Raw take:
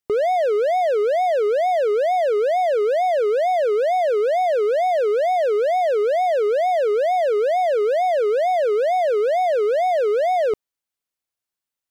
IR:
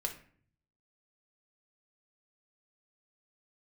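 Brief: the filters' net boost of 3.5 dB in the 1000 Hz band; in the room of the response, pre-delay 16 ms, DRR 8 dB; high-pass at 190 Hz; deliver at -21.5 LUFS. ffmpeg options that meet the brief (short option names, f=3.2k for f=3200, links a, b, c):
-filter_complex "[0:a]highpass=190,equalizer=f=1k:t=o:g=6.5,asplit=2[a][b];[1:a]atrim=start_sample=2205,adelay=16[c];[b][c]afir=irnorm=-1:irlink=0,volume=-9.5dB[d];[a][d]amix=inputs=2:normalize=0,volume=-5dB"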